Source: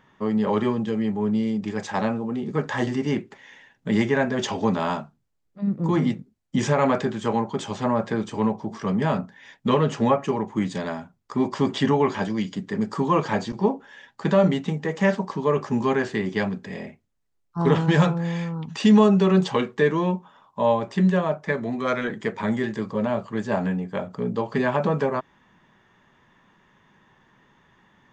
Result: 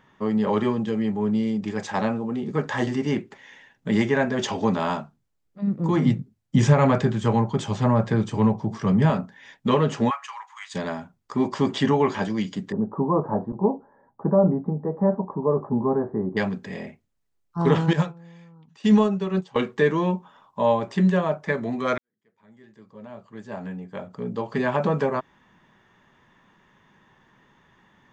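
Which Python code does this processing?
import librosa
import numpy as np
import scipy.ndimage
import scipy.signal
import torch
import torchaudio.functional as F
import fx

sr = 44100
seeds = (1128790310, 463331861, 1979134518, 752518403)

y = fx.peak_eq(x, sr, hz=120.0, db=11.5, octaves=1.0, at=(6.05, 9.1))
y = fx.steep_highpass(y, sr, hz=1000.0, slope=36, at=(10.09, 10.74), fade=0.02)
y = fx.cheby2_lowpass(y, sr, hz=2600.0, order=4, stop_db=50, at=(12.72, 16.37))
y = fx.upward_expand(y, sr, threshold_db=-25.0, expansion=2.5, at=(17.93, 19.56))
y = fx.edit(y, sr, fx.fade_in_span(start_s=21.98, length_s=2.86, curve='qua'), tone=tone)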